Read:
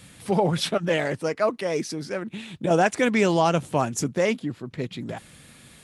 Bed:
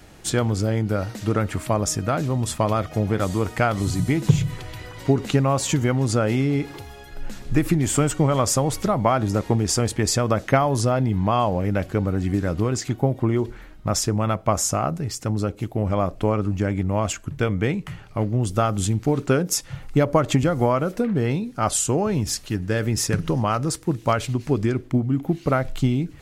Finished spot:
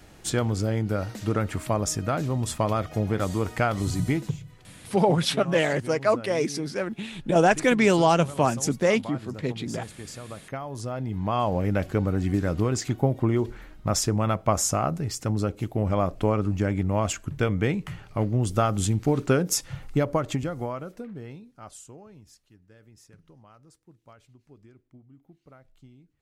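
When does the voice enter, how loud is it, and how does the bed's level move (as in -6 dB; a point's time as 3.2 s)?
4.65 s, +1.0 dB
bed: 4.16 s -3.5 dB
4.39 s -19 dB
10.39 s -19 dB
11.57 s -2 dB
19.71 s -2 dB
22.57 s -31.5 dB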